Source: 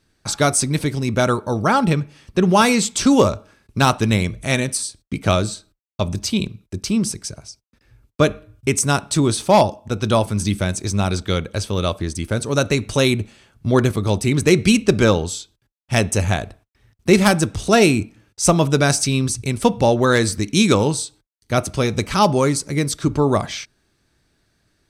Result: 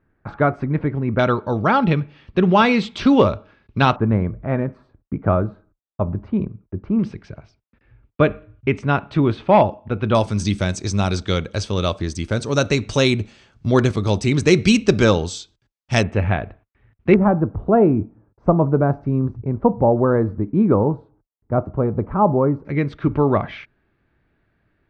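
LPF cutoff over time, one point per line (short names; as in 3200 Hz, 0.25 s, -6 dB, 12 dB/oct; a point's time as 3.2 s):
LPF 24 dB/oct
1800 Hz
from 1.19 s 3600 Hz
from 3.96 s 1400 Hz
from 6.99 s 2700 Hz
from 10.15 s 6700 Hz
from 16.03 s 2500 Hz
from 17.14 s 1100 Hz
from 22.65 s 2500 Hz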